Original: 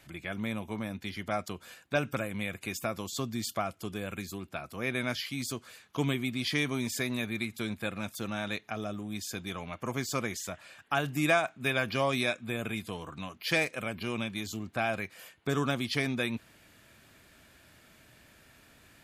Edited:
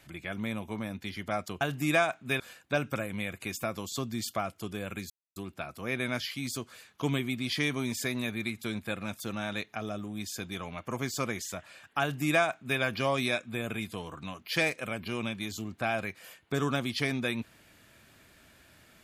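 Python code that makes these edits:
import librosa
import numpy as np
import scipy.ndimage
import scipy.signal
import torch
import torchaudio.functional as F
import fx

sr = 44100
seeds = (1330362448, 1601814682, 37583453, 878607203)

y = fx.edit(x, sr, fx.insert_silence(at_s=4.31, length_s=0.26),
    fx.duplicate(start_s=10.96, length_s=0.79, to_s=1.61), tone=tone)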